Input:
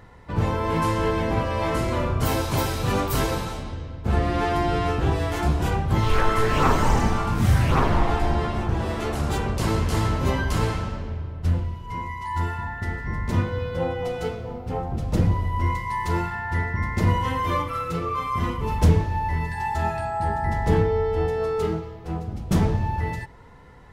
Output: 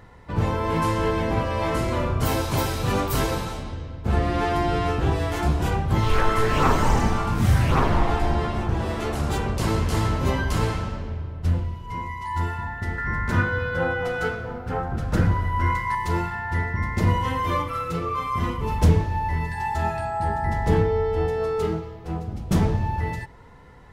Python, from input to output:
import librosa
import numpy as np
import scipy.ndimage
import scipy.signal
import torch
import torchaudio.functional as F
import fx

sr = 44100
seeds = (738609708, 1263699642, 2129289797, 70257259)

y = fx.peak_eq(x, sr, hz=1500.0, db=15.0, octaves=0.56, at=(12.98, 15.95))